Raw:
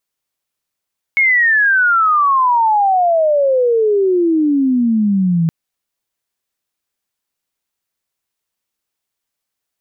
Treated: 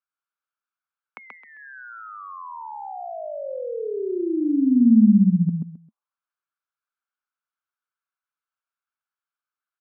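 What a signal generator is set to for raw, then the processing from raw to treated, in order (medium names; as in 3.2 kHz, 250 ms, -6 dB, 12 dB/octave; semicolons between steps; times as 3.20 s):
sweep logarithmic 2.2 kHz -> 160 Hz -9 dBFS -> -11 dBFS 4.32 s
band-stop 1.9 kHz, Q 5.7; auto-wah 220–1400 Hz, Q 4.4, down, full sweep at -20.5 dBFS; feedback delay 132 ms, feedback 24%, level -3 dB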